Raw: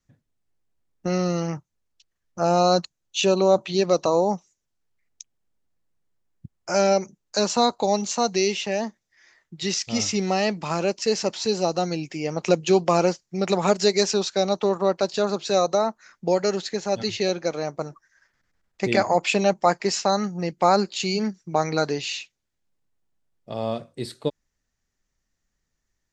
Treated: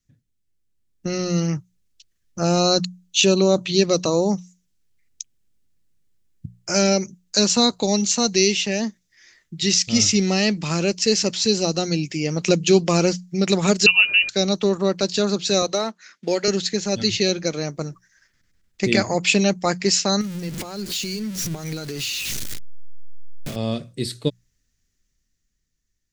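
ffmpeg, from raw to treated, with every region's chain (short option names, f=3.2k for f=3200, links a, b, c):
-filter_complex "[0:a]asettb=1/sr,asplit=3[a][b][c];[a]atrim=end=13.864[d];[b]atrim=start=13.86:end=14.29,asetpts=PTS-STARTPTS,afade=t=in:d=0.004:c=qsin,afade=t=out:st=0.426:d=0.004:c=qsin,aeval=exprs='val(0)+0.0316*sin(2*PI*670*n/s)':c=same,lowpass=f=2.6k:t=q:w=0.5098,lowpass=f=2.6k:t=q:w=0.6013,lowpass=f=2.6k:t=q:w=0.9,lowpass=f=2.6k:t=q:w=2.563,afreqshift=-3100[e];[c]atrim=start=14.286[f];[d][e]acrossfade=d=0.004:c1=hsin:c2=qsin[g];[g][f]acrossfade=d=0.004:c1=qsin:c2=hsin,asettb=1/sr,asplit=3[h][i][j];[h]atrim=end=15.624[k];[i]atrim=start=15.62:end=16.48,asetpts=PTS-STARTPTS,afade=t=in:d=0.004:c=qsin,afade=t=out:st=0.856:d=0.004:c=qsin,aemphasis=mode=production:type=75fm,acrusher=bits=6:mode=log:mix=0:aa=0.000001,highpass=280,lowpass=3.3k[l];[j]atrim=start=16.476[m];[k][l]acrossfade=d=0.004:c1=hsin:c2=qsin[n];[n][m]acrossfade=d=0.004:c1=qsin:c2=hsin,asettb=1/sr,asplit=3[o][p][q];[o]atrim=end=20.214[r];[p]atrim=start=20.21:end=23.56,asetpts=PTS-STARTPTS,afade=t=in:d=0.004:c=qsin,afade=t=out:st=3.346:d=0.004:c=qsin,aeval=exprs='val(0)+0.5*0.0398*sgn(val(0))':c=same,acompressor=threshold=-32dB:ratio=5:attack=3.2:release=140:knee=1:detection=peak[s];[q]atrim=start=23.556[t];[r][s]acrossfade=d=0.004:c1=hsin:c2=qsin[u];[u][t]acrossfade=d=0.004:c1=qsin:c2=hsin,equalizer=f=830:t=o:w=1.9:g=-15,bandreject=f=60:t=h:w=6,bandreject=f=120:t=h:w=6,bandreject=f=180:t=h:w=6,dynaudnorm=f=110:g=21:m=7dB,volume=2.5dB"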